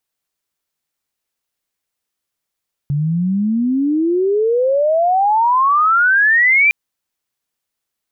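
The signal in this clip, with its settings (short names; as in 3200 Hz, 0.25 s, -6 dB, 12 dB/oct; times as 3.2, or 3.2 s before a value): chirp logarithmic 140 Hz -> 2400 Hz -14.5 dBFS -> -8.5 dBFS 3.81 s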